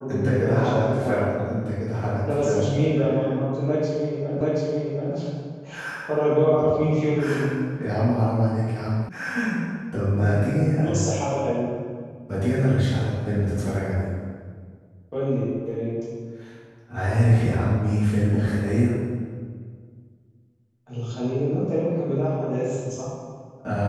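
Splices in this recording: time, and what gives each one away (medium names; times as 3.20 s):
4.41 s: repeat of the last 0.73 s
9.09 s: sound stops dead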